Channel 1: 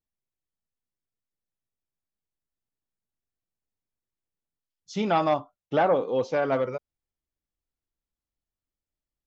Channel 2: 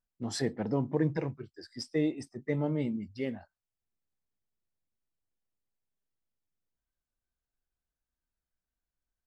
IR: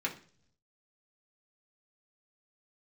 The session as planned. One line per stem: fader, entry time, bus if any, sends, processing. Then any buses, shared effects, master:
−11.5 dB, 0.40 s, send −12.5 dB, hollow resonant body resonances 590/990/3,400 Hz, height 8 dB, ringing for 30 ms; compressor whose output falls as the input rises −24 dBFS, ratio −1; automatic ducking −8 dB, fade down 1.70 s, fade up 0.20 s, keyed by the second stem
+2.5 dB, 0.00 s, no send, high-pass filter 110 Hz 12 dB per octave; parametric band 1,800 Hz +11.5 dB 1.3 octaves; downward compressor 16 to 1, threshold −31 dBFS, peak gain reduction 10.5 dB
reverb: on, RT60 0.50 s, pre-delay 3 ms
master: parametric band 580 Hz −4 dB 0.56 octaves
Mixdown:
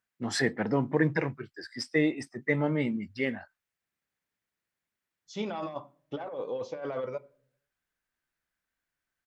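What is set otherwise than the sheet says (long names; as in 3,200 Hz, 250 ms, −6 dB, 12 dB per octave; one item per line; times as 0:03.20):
stem 2: missing downward compressor 16 to 1, threshold −31 dBFS, peak gain reduction 10.5 dB
master: missing parametric band 580 Hz −4 dB 0.56 octaves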